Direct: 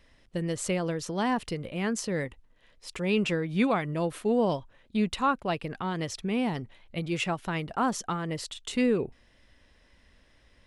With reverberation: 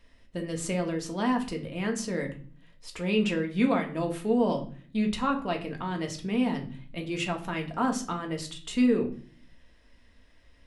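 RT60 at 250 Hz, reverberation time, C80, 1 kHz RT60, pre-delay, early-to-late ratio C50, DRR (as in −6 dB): 0.75 s, 0.45 s, 16.5 dB, 0.40 s, 3 ms, 12.0 dB, 1.5 dB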